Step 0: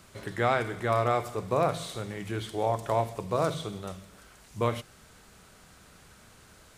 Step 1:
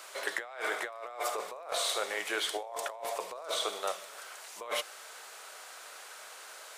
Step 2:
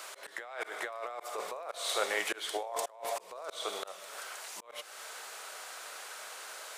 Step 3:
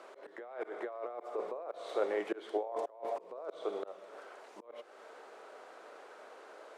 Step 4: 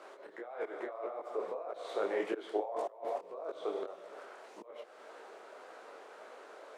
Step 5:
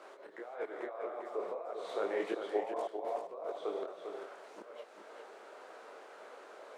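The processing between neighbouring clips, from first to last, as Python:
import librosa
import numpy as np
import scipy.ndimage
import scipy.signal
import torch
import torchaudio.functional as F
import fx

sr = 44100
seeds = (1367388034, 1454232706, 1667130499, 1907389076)

y1 = scipy.signal.sosfilt(scipy.signal.butter(4, 530.0, 'highpass', fs=sr, output='sos'), x)
y1 = fx.over_compress(y1, sr, threshold_db=-40.0, ratio=-1.0)
y1 = y1 * 10.0 ** (2.5 / 20.0)
y2 = fx.auto_swell(y1, sr, attack_ms=309.0)
y2 = y2 * 10.0 ** (3.0 / 20.0)
y3 = fx.bandpass_q(y2, sr, hz=330.0, q=1.5)
y3 = y3 * 10.0 ** (7.0 / 20.0)
y4 = fx.detune_double(y3, sr, cents=60)
y4 = y4 * 10.0 ** (4.5 / 20.0)
y5 = y4 + 10.0 ** (-7.0 / 20.0) * np.pad(y4, (int(397 * sr / 1000.0), 0))[:len(y4)]
y5 = y5 * 10.0 ** (-1.0 / 20.0)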